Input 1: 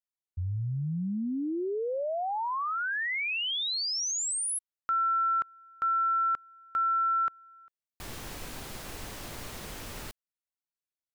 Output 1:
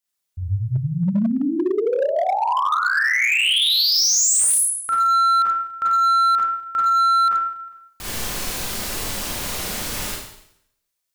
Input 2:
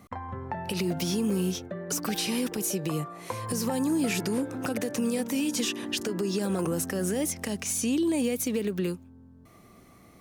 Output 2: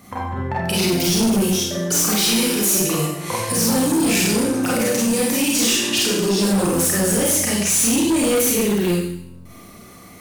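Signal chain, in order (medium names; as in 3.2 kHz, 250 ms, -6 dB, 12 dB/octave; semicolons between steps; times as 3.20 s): treble shelf 2.6 kHz +7 dB; Schroeder reverb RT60 0.73 s, combs from 31 ms, DRR -6 dB; hard clipper -18.5 dBFS; trim +4 dB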